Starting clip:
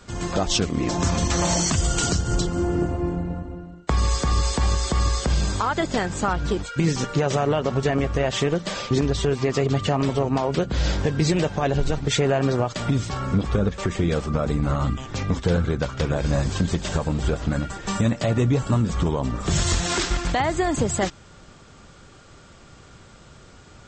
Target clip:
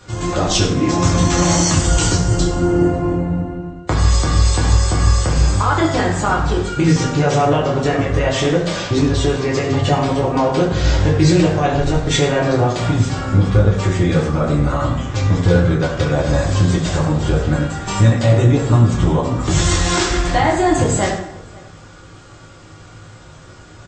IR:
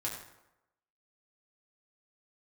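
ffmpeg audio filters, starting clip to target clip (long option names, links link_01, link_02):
-filter_complex "[0:a]asettb=1/sr,asplit=3[link_01][link_02][link_03];[link_01]atrim=end=4.724[link_04];[link_02]atrim=start=4.72:end=5.62,asetpts=PTS-STARTPTS,afade=type=in:duration=0.004:curve=qsin,afade=type=out:start_time=0.896:duration=0.004:curve=qsin,equalizer=frequency=3800:width_type=o:width=0.34:gain=-6.5[link_05];[link_03]atrim=start=5.616[link_06];[link_04][link_05]acrossfade=duration=0.004:curve1=hsin:curve2=qsin[link_07];[link_07][link_06]acrossfade=duration=0.004:curve1=qsin:curve2=hsin,asplit=2[link_08][link_09];[link_09]adelay=542.3,volume=-23dB,highshelf=frequency=4000:gain=-12.2[link_10];[link_08][link_10]amix=inputs=2:normalize=0[link_11];[1:a]atrim=start_sample=2205,afade=type=out:start_time=0.44:duration=0.01,atrim=end_sample=19845[link_12];[link_11][link_12]afir=irnorm=-1:irlink=0,volume=4.5dB"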